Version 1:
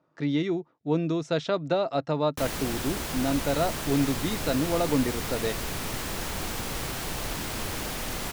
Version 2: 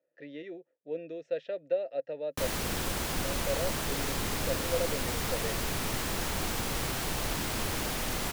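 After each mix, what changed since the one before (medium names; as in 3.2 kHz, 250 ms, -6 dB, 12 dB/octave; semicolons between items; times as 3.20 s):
speech: add vowel filter e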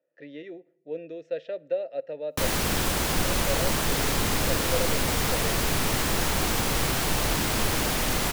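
background +4.0 dB; reverb: on, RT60 0.85 s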